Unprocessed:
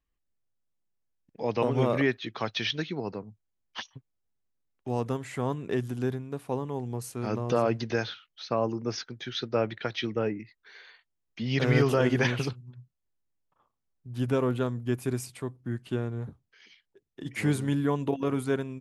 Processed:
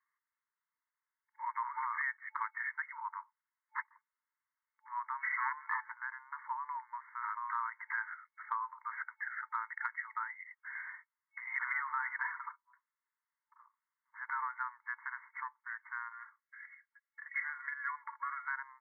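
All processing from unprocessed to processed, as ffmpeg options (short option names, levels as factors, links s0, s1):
-filter_complex "[0:a]asettb=1/sr,asplit=3[s0][s1][s2];[s0]atrim=end=5.234[s3];[s1]atrim=start=5.23:end=5.92,asetpts=PTS-STARTPTS,afade=t=in:d=0.004:c=qsin,afade=t=out:st=0.686:d=0.004:c=qsin,aecho=1:1:4.6:0.48,atrim=end_sample=30429,aeval=exprs='0.158*sin(PI/2*2*val(0)/0.158)':c=same[s4];[s2]atrim=start=5.916[s5];[s3][s4]acrossfade=d=0.004:c1=hsin:c2=qsin[s6];[s6][s5]acrossfade=d=0.004:c1=qsin:c2=hsin,asettb=1/sr,asplit=3[s7][s8][s9];[s7]atrim=end=12.164[s10];[s8]atrim=start=12.16:end=12.75,asetpts=PTS-STARTPTS,afade=t=in:d=0.004:c=qsin,afade=t=out:st=0.586:d=0.004:c=qsin,lowpass=1300,aecho=1:1:5.1:0.41,atrim=end_sample=26019[s11];[s9]atrim=start=12.746[s12];[s10][s11]acrossfade=d=0.004:c1=hsin:c2=qsin[s13];[s13][s12]acrossfade=d=0.004:c1=qsin:c2=hsin,asettb=1/sr,asplit=3[s14][s15][s16];[s14]atrim=end=16.134[s17];[s15]atrim=start=16.13:end=18.48,asetpts=PTS-STARTPTS,afade=t=in:d=0.004:c=qsin,afade=t=out:st=2.346:d=0.004:c=qsin,highpass=f=1200:w=0.5412,highpass=f=1200:w=1.3066,aecho=1:1:3.6:0.47,atrim=end_sample=103635[s18];[s16]atrim=start=18.476[s19];[s17][s18]acrossfade=d=0.004:c1=hsin:c2=qsin[s20];[s20][s19]acrossfade=d=0.004:c1=qsin:c2=hsin,afftfilt=real='re*between(b*sr/4096,880,2200)':imag='im*between(b*sr/4096,880,2200)':win_size=4096:overlap=0.75,acompressor=threshold=0.00501:ratio=3,volume=2.82"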